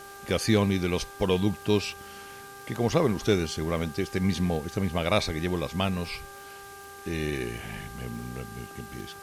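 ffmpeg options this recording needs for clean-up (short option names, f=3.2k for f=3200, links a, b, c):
-af "adeclick=t=4,bandreject=f=397.2:t=h:w=4,bandreject=f=794.4:t=h:w=4,bandreject=f=1.1916k:t=h:w=4,bandreject=f=1.5888k:t=h:w=4,afwtdn=0.0032"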